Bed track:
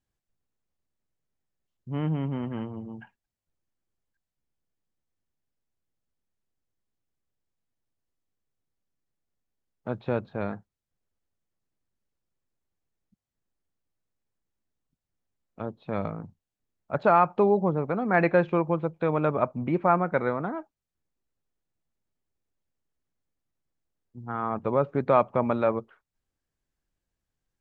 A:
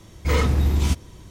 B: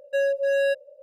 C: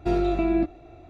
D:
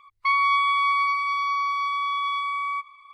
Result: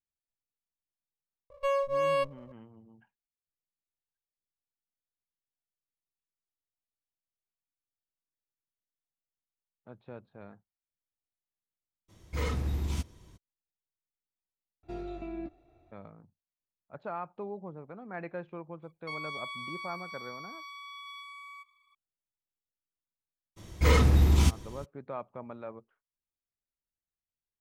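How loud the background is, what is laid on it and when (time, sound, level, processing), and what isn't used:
bed track -18 dB
1.50 s: add B -4.5 dB + sliding maximum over 17 samples
12.08 s: add A -12 dB, fades 0.02 s
14.83 s: replace with C -16.5 dB
18.82 s: add D -6 dB + differentiator
23.56 s: add A -2 dB, fades 0.02 s

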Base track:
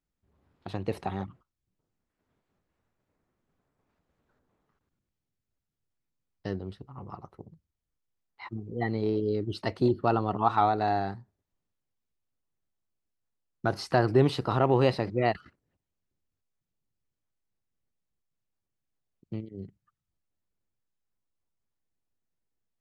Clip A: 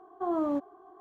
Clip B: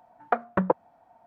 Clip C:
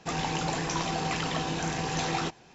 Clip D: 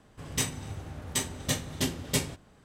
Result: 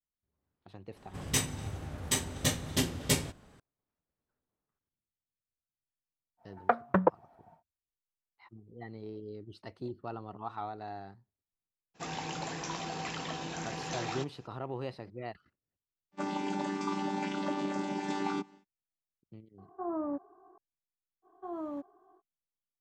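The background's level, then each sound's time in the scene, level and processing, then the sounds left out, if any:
base track -15.5 dB
0.96 s: add D
6.37 s: add B -2 dB, fades 0.10 s
11.94 s: add C -7.5 dB, fades 0.02 s + high-pass 120 Hz 6 dB/octave
16.11 s: add C -2.5 dB, fades 0.10 s + vocoder on a held chord bare fifth, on G3
19.58 s: add A -6 dB + low-pass 1.7 kHz 24 dB/octave
21.22 s: add A -10 dB, fades 0.05 s

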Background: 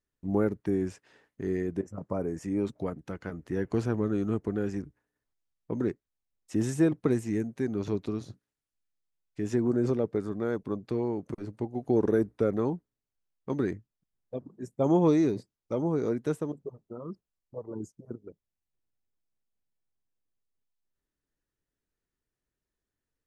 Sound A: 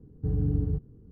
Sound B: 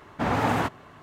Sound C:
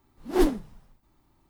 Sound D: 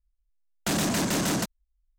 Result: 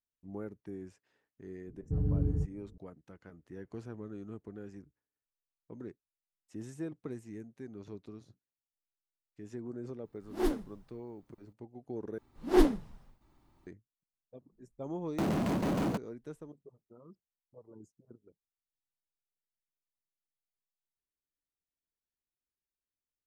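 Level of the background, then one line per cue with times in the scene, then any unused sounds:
background -15.5 dB
1.67 s: add A -3.5 dB + level-controlled noise filter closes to 420 Hz, open at -23.5 dBFS
10.04 s: add C -9 dB
12.18 s: replace with C -1.5 dB + treble shelf 8.3 kHz -7 dB
14.52 s: add D -4 dB + median filter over 25 samples
not used: B

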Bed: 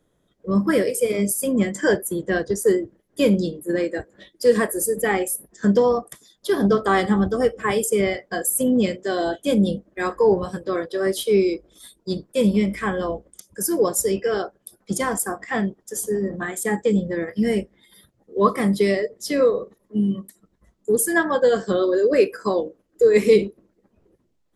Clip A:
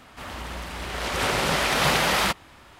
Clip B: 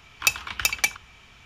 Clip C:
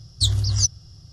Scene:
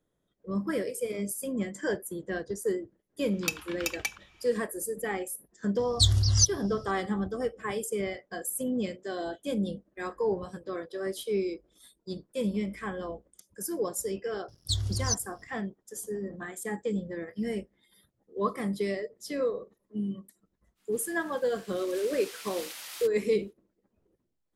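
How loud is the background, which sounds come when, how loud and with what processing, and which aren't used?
bed -11.5 dB
3.21 s: add B -10 dB
5.79 s: add C -2 dB
14.48 s: add C -9 dB + crossover distortion -47.5 dBFS
20.75 s: add A -12.5 dB, fades 0.05 s + differentiator

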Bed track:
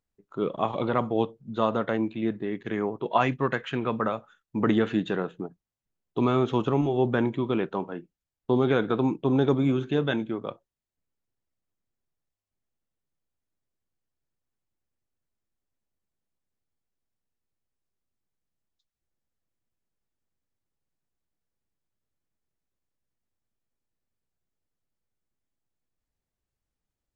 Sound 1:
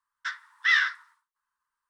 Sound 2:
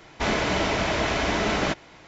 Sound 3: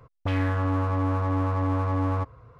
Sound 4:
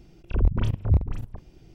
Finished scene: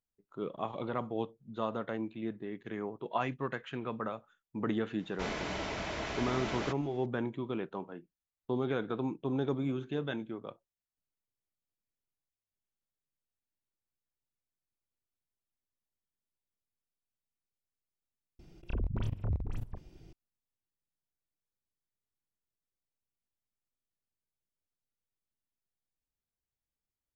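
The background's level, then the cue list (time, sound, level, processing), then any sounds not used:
bed track -10 dB
4.99 s: add 2 -13 dB
18.39 s: replace with 4 -4 dB + compression 4:1, threshold -25 dBFS
not used: 1, 3

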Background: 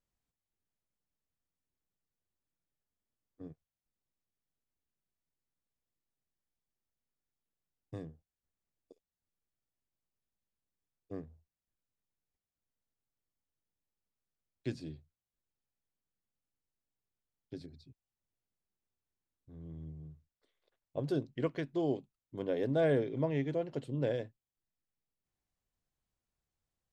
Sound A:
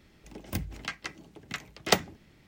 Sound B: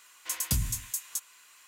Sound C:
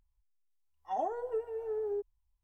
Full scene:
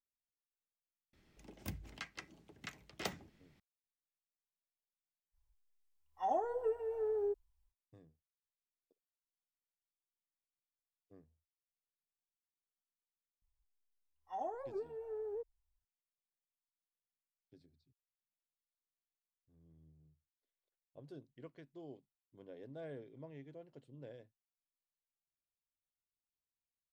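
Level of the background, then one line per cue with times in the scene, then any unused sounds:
background -19 dB
1.13 s: add A -11 dB + peak limiter -12 dBFS
5.32 s: add C -1 dB, fades 0.05 s
13.42 s: add C -7.5 dB + warped record 78 rpm, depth 250 cents
not used: B

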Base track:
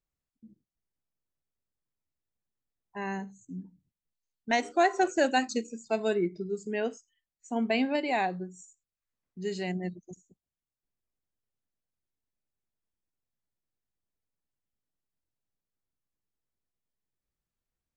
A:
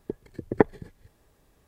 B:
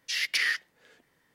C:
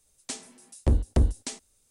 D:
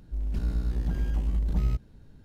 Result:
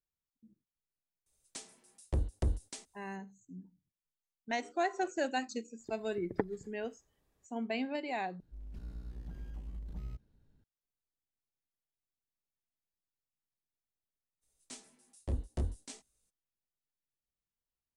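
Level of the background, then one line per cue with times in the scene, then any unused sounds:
base track -8.5 dB
1.26 s: add C -10 dB + band-stop 250 Hz, Q 6.3
5.79 s: add A -14 dB
8.40 s: replace with D -17 dB
14.41 s: add C -9 dB, fades 0.02 s + detune thickener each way 21 cents
not used: B

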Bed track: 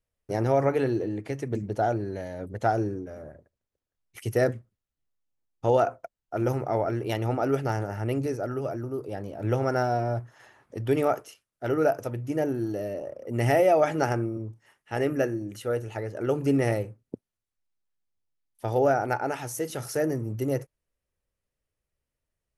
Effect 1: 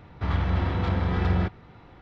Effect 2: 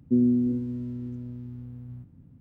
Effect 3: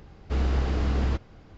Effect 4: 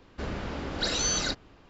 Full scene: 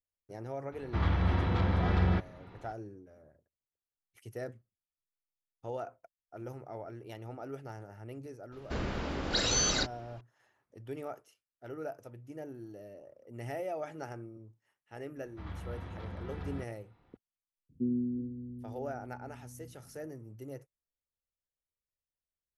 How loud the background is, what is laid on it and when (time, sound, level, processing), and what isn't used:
bed track -17 dB
0.72 s: add 1 -3.5 dB
8.52 s: add 4 -1 dB
15.16 s: add 1 -17.5 dB
17.69 s: add 2 -10.5 dB + steep low-pass 510 Hz 72 dB/octave
not used: 3

